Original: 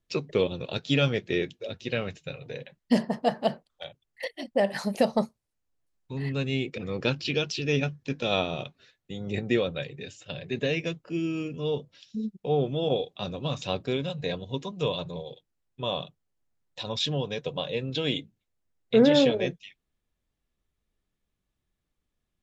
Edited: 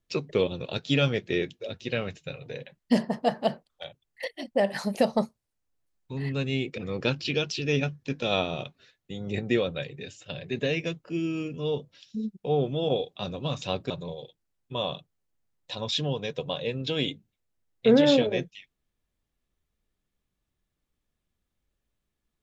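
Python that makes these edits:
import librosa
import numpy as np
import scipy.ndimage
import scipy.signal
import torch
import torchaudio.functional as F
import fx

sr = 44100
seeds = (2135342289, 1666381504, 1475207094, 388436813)

y = fx.edit(x, sr, fx.cut(start_s=13.9, length_s=1.08), tone=tone)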